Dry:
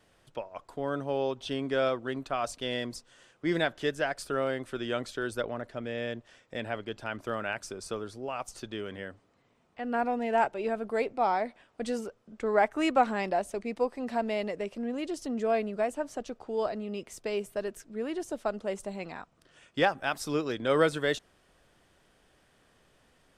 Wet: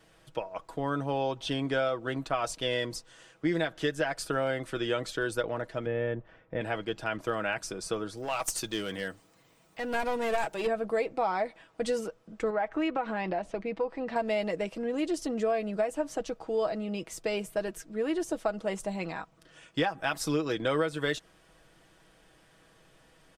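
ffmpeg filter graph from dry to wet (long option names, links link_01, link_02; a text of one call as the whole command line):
ffmpeg -i in.wav -filter_complex "[0:a]asettb=1/sr,asplit=3[link_01][link_02][link_03];[link_01]atrim=end=5.864[link_04];[link_02]atrim=start=5.86:end=6.61,asetpts=PTS-STARTPTS,afade=type=in:duration=0.004:curve=qsin,afade=type=out:start_time=0.746:duration=0.004:curve=qsin,lowpass=1600,lowshelf=frequency=130:gain=8.5[link_05];[link_03]atrim=start=6.606[link_06];[link_04][link_05]acrossfade=duration=0.004:curve1=hsin:curve2=qsin[link_07];[link_07][link_06]acrossfade=duration=0.004:curve1=qsin:curve2=hsin,asettb=1/sr,asplit=3[link_08][link_09][link_10];[link_08]atrim=end=8.174[link_11];[link_09]atrim=start=8.17:end=10.67,asetpts=PTS-STARTPTS,afade=type=in:duration=0.004:curve=qsin,afade=type=out:start_time=2.496:duration=0.004:curve=qsin,aemphasis=mode=production:type=75kf,aeval=exprs='clip(val(0),-1,0.0299)':channel_layout=same[link_12];[link_10]atrim=start=10.666[link_13];[link_11][link_12]acrossfade=duration=0.004:curve1=hsin:curve2=qsin[link_14];[link_14][link_13]acrossfade=duration=0.004:curve1=qsin:curve2=hsin,asettb=1/sr,asplit=3[link_15][link_16][link_17];[link_15]atrim=end=12.504[link_18];[link_16]atrim=start=12.5:end=14.16,asetpts=PTS-STARTPTS,afade=type=in:duration=0.004:curve=qsin,afade=type=out:start_time=1.656:duration=0.004:curve=qsin,lowpass=3400,acompressor=threshold=-31dB:ratio=3:attack=3.2:release=140:knee=1:detection=peak[link_19];[link_17]atrim=start=14.156[link_20];[link_18][link_19]acrossfade=duration=0.004:curve1=hsin:curve2=qsin[link_21];[link_21][link_20]acrossfade=duration=0.004:curve1=qsin:curve2=hsin,aecho=1:1:6.2:0.52,acompressor=threshold=-27dB:ratio=12,volume=3dB" out.wav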